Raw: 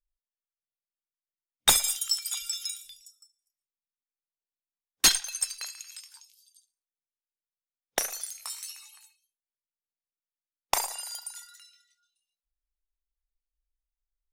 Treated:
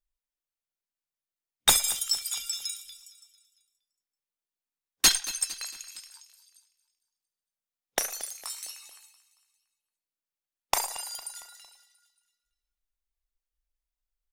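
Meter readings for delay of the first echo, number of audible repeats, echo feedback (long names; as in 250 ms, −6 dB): 228 ms, 3, 49%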